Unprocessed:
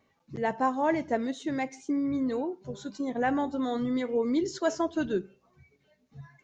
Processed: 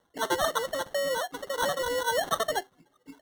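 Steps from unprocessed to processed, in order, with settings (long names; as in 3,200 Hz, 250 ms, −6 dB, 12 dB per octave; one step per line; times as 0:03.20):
decimation without filtering 36×
wrong playback speed 7.5 ips tape played at 15 ips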